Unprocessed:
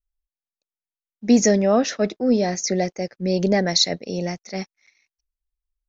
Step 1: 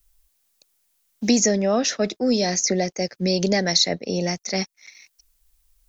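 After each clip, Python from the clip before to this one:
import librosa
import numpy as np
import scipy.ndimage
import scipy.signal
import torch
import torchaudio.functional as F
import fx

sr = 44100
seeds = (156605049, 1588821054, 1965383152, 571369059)

y = fx.high_shelf(x, sr, hz=4600.0, db=11.0)
y = fx.band_squash(y, sr, depth_pct=70)
y = F.gain(torch.from_numpy(y), -2.0).numpy()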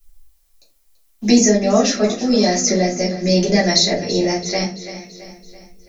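y = fx.echo_feedback(x, sr, ms=334, feedback_pct=52, wet_db=-13.5)
y = fx.room_shoebox(y, sr, seeds[0], volume_m3=130.0, walls='furnished', distance_m=3.1)
y = F.gain(torch.from_numpy(y), -2.5).numpy()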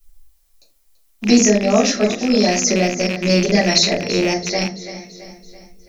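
y = fx.rattle_buzz(x, sr, strikes_db=-26.0, level_db=-14.0)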